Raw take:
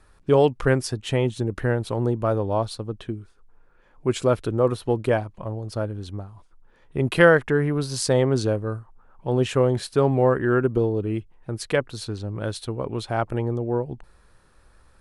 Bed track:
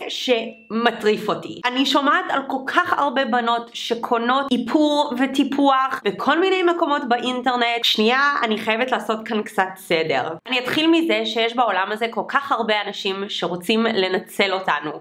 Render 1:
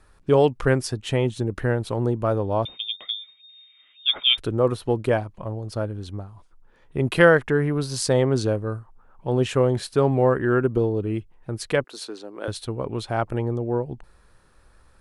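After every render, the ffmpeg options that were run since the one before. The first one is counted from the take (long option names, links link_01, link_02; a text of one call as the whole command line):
ffmpeg -i in.wav -filter_complex "[0:a]asettb=1/sr,asplit=3[link_01][link_02][link_03];[link_01]atrim=end=2.654[link_04];[link_02]atrim=start=2.65:end=4.38,asetpts=PTS-STARTPTS,afade=type=in:duration=0.004:curve=qsin,afade=type=out:start_time=1.726:duration=0.004:curve=qsin,lowpass=frequency=3100:width_type=q:width=0.5098,lowpass=frequency=3100:width_type=q:width=0.6013,lowpass=frequency=3100:width_type=q:width=0.9,lowpass=frequency=3100:width_type=q:width=2.563,afreqshift=-3700[link_05];[link_03]atrim=start=4.376[link_06];[link_04][link_05]acrossfade=duration=0.004:curve1=hsin:curve2=qsin[link_07];[link_07][link_06]acrossfade=duration=0.004:curve1=qsin:curve2=hsin,asettb=1/sr,asplit=3[link_08][link_09][link_10];[link_08]atrim=end=11.844[link_11];[link_09]atrim=start=11.84:end=12.48,asetpts=PTS-STARTPTS,afade=type=in:duration=0.004:curve=qsin,afade=type=out:start_time=0.636:duration=0.004:curve=qsin,highpass=frequency=300:width=0.5412,highpass=frequency=300:width=1.3066[link_12];[link_10]atrim=start=12.476[link_13];[link_11][link_12]acrossfade=duration=0.004:curve1=hsin:curve2=qsin[link_14];[link_14][link_13]acrossfade=duration=0.004:curve1=qsin:curve2=hsin" out.wav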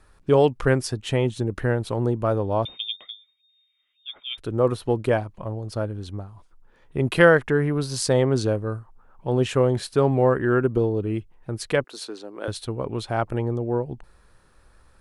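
ffmpeg -i in.wav -filter_complex "[0:a]asplit=3[link_01][link_02][link_03];[link_01]atrim=end=3.17,asetpts=PTS-STARTPTS,afade=type=out:start_time=2.87:duration=0.3:silence=0.16788[link_04];[link_02]atrim=start=3.17:end=4.3,asetpts=PTS-STARTPTS,volume=-15.5dB[link_05];[link_03]atrim=start=4.3,asetpts=PTS-STARTPTS,afade=type=in:duration=0.3:silence=0.16788[link_06];[link_04][link_05][link_06]concat=n=3:v=0:a=1" out.wav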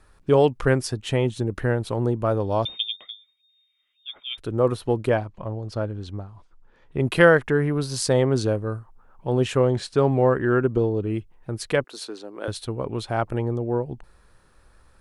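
ffmpeg -i in.wav -filter_complex "[0:a]asettb=1/sr,asplit=3[link_01][link_02][link_03];[link_01]atrim=end=2.404[link_04];[link_02]atrim=start=2.4:end=2.83,asetpts=PTS-STARTPTS,afade=type=in:duration=0.004:curve=qsin,afade=type=out:start_time=0.426:duration=0.004:curve=qsin,equalizer=frequency=5300:width_type=o:width=1.1:gain=11[link_05];[link_03]atrim=start=2.826[link_06];[link_04][link_05]acrossfade=duration=0.004:curve1=hsin:curve2=qsin[link_07];[link_07][link_06]acrossfade=duration=0.004:curve1=qsin:curve2=hsin,asettb=1/sr,asplit=3[link_08][link_09][link_10];[link_08]atrim=end=5.094[link_11];[link_09]atrim=start=5.09:end=7,asetpts=PTS-STARTPTS,afade=type=in:duration=0.004:curve=qsin,afade=type=out:start_time=1.906:duration=0.004:curve=qsin,lowpass=6600[link_12];[link_10]atrim=start=6.996[link_13];[link_11][link_12]acrossfade=duration=0.004:curve1=hsin:curve2=qsin[link_14];[link_14][link_13]acrossfade=duration=0.004:curve1=qsin:curve2=hsin,asettb=1/sr,asplit=3[link_15][link_16][link_17];[link_15]atrim=end=9.574[link_18];[link_16]atrim=start=9.57:end=11.1,asetpts=PTS-STARTPTS,afade=type=in:duration=0.004:curve=qsin,afade=type=out:start_time=1.526:duration=0.004:curve=qsin,lowpass=frequency=8600:width=0.5412,lowpass=frequency=8600:width=1.3066[link_19];[link_17]atrim=start=11.096[link_20];[link_18][link_19]acrossfade=duration=0.004:curve1=hsin:curve2=qsin[link_21];[link_21][link_20]acrossfade=duration=0.004:curve1=qsin:curve2=hsin" out.wav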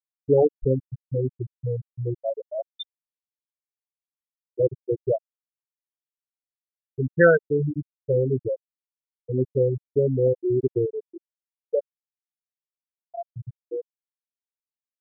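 ffmpeg -i in.wav -af "afwtdn=0.0282,afftfilt=real='re*gte(hypot(re,im),0.562)':imag='im*gte(hypot(re,im),0.562)':win_size=1024:overlap=0.75" out.wav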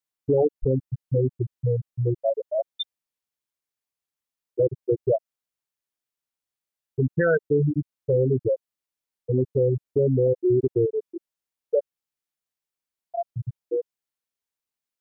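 ffmpeg -i in.wav -filter_complex "[0:a]asplit=2[link_01][link_02];[link_02]acompressor=threshold=-27dB:ratio=6,volume=-1dB[link_03];[link_01][link_03]amix=inputs=2:normalize=0,alimiter=limit=-13dB:level=0:latency=1:release=16" out.wav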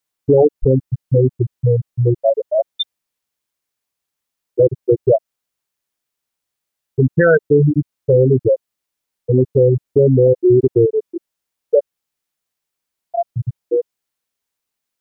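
ffmpeg -i in.wav -af "volume=9dB" out.wav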